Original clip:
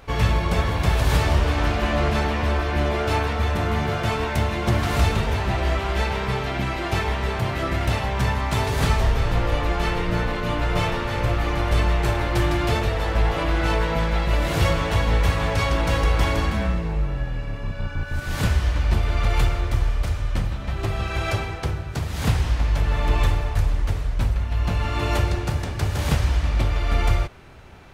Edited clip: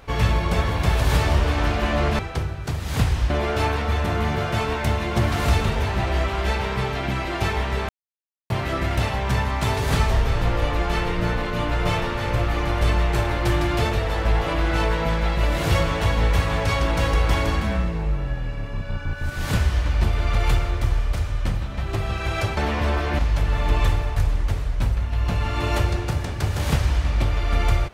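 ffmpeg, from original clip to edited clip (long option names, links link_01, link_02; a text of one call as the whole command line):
ffmpeg -i in.wav -filter_complex "[0:a]asplit=6[link_01][link_02][link_03][link_04][link_05][link_06];[link_01]atrim=end=2.192[link_07];[link_02]atrim=start=21.468:end=22.582[link_08];[link_03]atrim=start=2.808:end=7.4,asetpts=PTS-STARTPTS,afade=type=out:start_time=4.588:duration=0.004:curve=hsin,apad=pad_dur=0.61[link_09];[link_04]atrim=start=7.4:end=21.472,asetpts=PTS-STARTPTS,afade=type=in:duration=0.004:curve=hsin[link_10];[link_05]atrim=start=2.188:end=2.812[link_11];[link_06]atrim=start=22.578[link_12];[link_07][link_08]acrossfade=duration=0.004:curve1=hsin:curve2=hsin[link_13];[link_09][link_10]concat=n=2:v=0:a=1[link_14];[link_13][link_14]acrossfade=duration=0.004:curve1=hsin:curve2=hsin[link_15];[link_15][link_11]acrossfade=duration=0.004:curve1=hsin:curve2=hsin[link_16];[link_16][link_12]acrossfade=duration=0.004:curve1=hsin:curve2=hsin" out.wav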